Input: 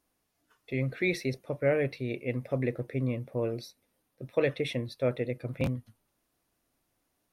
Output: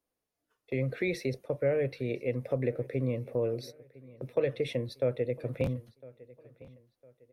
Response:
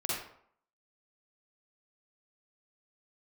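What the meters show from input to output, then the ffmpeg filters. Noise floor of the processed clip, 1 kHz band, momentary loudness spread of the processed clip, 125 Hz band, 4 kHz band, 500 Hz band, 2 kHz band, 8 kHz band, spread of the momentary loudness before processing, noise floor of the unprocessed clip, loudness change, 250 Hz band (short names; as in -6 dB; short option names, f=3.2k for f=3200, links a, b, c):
under -85 dBFS, -4.0 dB, 8 LU, -1.0 dB, -3.5 dB, +0.5 dB, -5.0 dB, n/a, 6 LU, -78 dBFS, -0.5 dB, -2.5 dB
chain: -filter_complex "[0:a]agate=range=-11dB:threshold=-47dB:ratio=16:detection=peak,equalizer=f=490:w=2.2:g=8,acrossover=split=150[a][b];[b]acompressor=threshold=-31dB:ratio=2[c];[a][c]amix=inputs=2:normalize=0,asplit=2[d][e];[e]adelay=1006,lowpass=f=4.2k:p=1,volume=-21dB,asplit=2[f][g];[g]adelay=1006,lowpass=f=4.2k:p=1,volume=0.38,asplit=2[h][i];[i]adelay=1006,lowpass=f=4.2k:p=1,volume=0.38[j];[f][h][j]amix=inputs=3:normalize=0[k];[d][k]amix=inputs=2:normalize=0"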